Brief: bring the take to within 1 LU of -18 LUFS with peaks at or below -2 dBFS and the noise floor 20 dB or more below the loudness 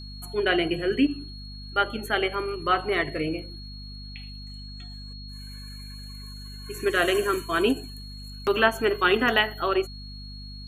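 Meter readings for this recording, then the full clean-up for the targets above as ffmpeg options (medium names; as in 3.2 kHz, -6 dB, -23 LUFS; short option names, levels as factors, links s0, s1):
hum 50 Hz; highest harmonic 250 Hz; hum level -38 dBFS; steady tone 4.3 kHz; tone level -43 dBFS; loudness -25.0 LUFS; peak level -4.5 dBFS; loudness target -18.0 LUFS
-> -af "bandreject=f=50:t=h:w=6,bandreject=f=100:t=h:w=6,bandreject=f=150:t=h:w=6,bandreject=f=200:t=h:w=6,bandreject=f=250:t=h:w=6"
-af "bandreject=f=4300:w=30"
-af "volume=2.24,alimiter=limit=0.794:level=0:latency=1"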